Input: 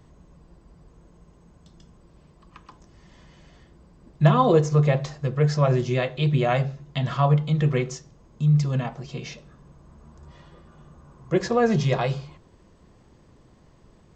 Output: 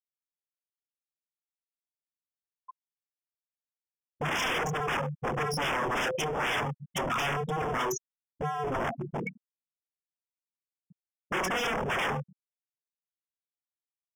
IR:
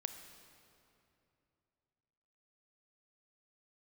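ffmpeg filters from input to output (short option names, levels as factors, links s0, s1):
-filter_complex "[0:a]highpass=f=150:w=0.5412,highpass=f=150:w=1.3066,highshelf=f=5500:g=6.5,asplit=2[s0][s1];[s1]adelay=27,volume=0.562[s2];[s0][s2]amix=inputs=2:normalize=0,aresample=16000,asoftclip=type=hard:threshold=0.0891,aresample=44100,aecho=1:1:70:0.355,asplit=2[s3][s4];[s4]acompressor=threshold=0.0224:ratio=6,volume=1.26[s5];[s3][s5]amix=inputs=2:normalize=0,afftfilt=real='re*gte(hypot(re,im),0.141)':imag='im*gte(hypot(re,im),0.141)':win_size=1024:overlap=0.75,aeval=exprs='0.0447*(abs(mod(val(0)/0.0447+3,4)-2)-1)':c=same,asuperstop=centerf=4200:order=8:qfactor=2.5,lowshelf=f=330:g=-7,volume=1.58"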